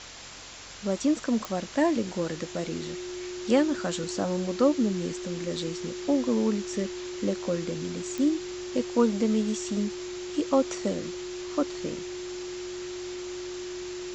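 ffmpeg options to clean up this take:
-af "adeclick=t=4,bandreject=f=45.3:t=h:w=4,bandreject=f=90.6:t=h:w=4,bandreject=f=135.9:t=h:w=4,bandreject=f=360:w=30,afftdn=nr=30:nf=-37"

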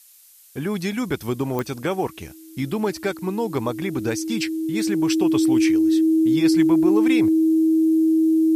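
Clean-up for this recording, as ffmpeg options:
-af "adeclick=t=4,bandreject=f=320:w=30,agate=range=-21dB:threshold=-35dB"

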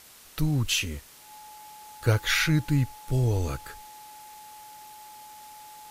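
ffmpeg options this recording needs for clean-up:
-af "bandreject=f=850:w=30,afwtdn=0.0032"

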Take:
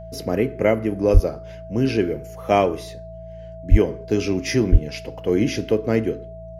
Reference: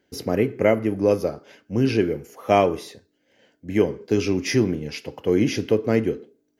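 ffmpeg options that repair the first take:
-filter_complex "[0:a]bandreject=f=56.4:t=h:w=4,bandreject=f=112.8:t=h:w=4,bandreject=f=169.2:t=h:w=4,bandreject=f=650:w=30,asplit=3[a][b][c];[a]afade=t=out:st=1.13:d=0.02[d];[b]highpass=f=140:w=0.5412,highpass=f=140:w=1.3066,afade=t=in:st=1.13:d=0.02,afade=t=out:st=1.25:d=0.02[e];[c]afade=t=in:st=1.25:d=0.02[f];[d][e][f]amix=inputs=3:normalize=0,asplit=3[g][h][i];[g]afade=t=out:st=3.7:d=0.02[j];[h]highpass=f=140:w=0.5412,highpass=f=140:w=1.3066,afade=t=in:st=3.7:d=0.02,afade=t=out:st=3.82:d=0.02[k];[i]afade=t=in:st=3.82:d=0.02[l];[j][k][l]amix=inputs=3:normalize=0,asplit=3[m][n][o];[m]afade=t=out:st=4.71:d=0.02[p];[n]highpass=f=140:w=0.5412,highpass=f=140:w=1.3066,afade=t=in:st=4.71:d=0.02,afade=t=out:st=4.83:d=0.02[q];[o]afade=t=in:st=4.83:d=0.02[r];[p][q][r]amix=inputs=3:normalize=0"

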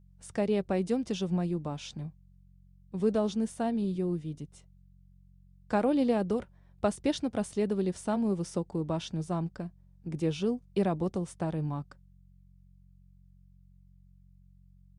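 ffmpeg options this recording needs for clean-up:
-af "bandreject=f=45.7:t=h:w=4,bandreject=f=91.4:t=h:w=4,bandreject=f=137.1:t=h:w=4,bandreject=f=182.8:t=h:w=4"

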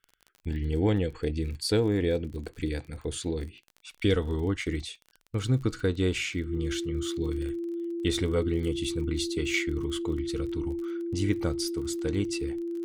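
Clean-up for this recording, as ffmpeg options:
-af "adeclick=t=4,bandreject=f=340:w=30"

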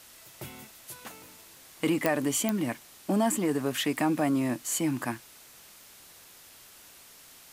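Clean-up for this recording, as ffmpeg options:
-af "adeclick=t=4,afwtdn=0.0028"

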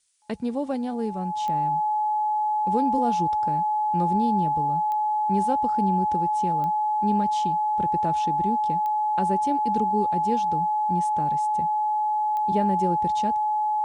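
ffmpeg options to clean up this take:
-af "adeclick=t=4,bandreject=f=850:w=30,agate=range=-21dB:threshold=-17dB"

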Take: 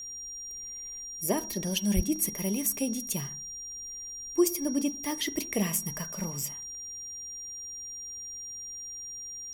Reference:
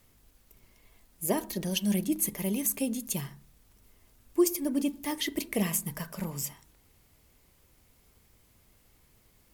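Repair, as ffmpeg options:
-filter_complex "[0:a]bandreject=f=5.7k:w=30,asplit=3[a][b][c];[a]afade=t=out:st=1.95:d=0.02[d];[b]highpass=f=140:w=0.5412,highpass=f=140:w=1.3066,afade=t=in:st=1.95:d=0.02,afade=t=out:st=2.07:d=0.02[e];[c]afade=t=in:st=2.07:d=0.02[f];[d][e][f]amix=inputs=3:normalize=0"

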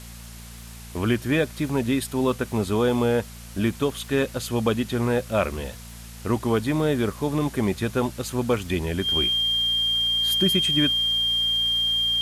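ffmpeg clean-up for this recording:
-af "adeclick=t=4,bandreject=f=57.6:t=h:w=4,bandreject=f=115.2:t=h:w=4,bandreject=f=172.8:t=h:w=4,bandreject=f=230.4:t=h:w=4,bandreject=f=3.2k:w=30,afftdn=nr=29:nf=-40"

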